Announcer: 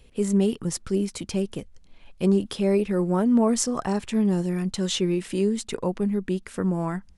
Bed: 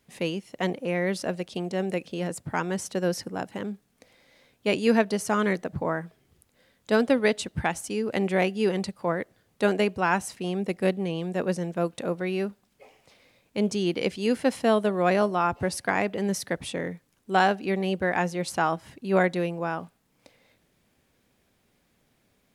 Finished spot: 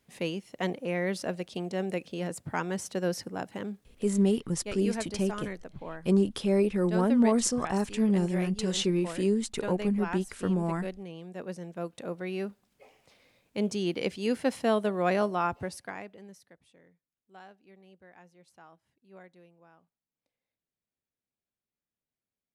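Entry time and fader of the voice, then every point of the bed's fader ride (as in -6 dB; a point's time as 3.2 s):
3.85 s, -3.0 dB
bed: 4.19 s -3.5 dB
4.43 s -13 dB
11.24 s -13 dB
12.63 s -4 dB
15.46 s -4 dB
16.6 s -29.5 dB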